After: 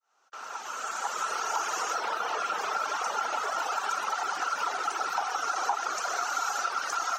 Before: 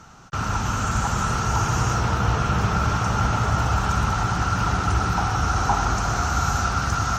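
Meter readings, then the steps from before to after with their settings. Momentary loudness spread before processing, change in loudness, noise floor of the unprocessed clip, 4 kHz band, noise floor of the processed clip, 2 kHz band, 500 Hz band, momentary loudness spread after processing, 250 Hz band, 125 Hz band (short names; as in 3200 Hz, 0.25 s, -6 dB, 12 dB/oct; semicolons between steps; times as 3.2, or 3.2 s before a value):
2 LU, -7.5 dB, -28 dBFS, -5.0 dB, -43 dBFS, -5.0 dB, -7.0 dB, 4 LU, -24.5 dB, under -40 dB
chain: opening faded in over 1.59 s; reverb removal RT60 1.7 s; HPF 450 Hz 24 dB/oct; compressor 3:1, threshold -26 dBFS, peak gain reduction 6.5 dB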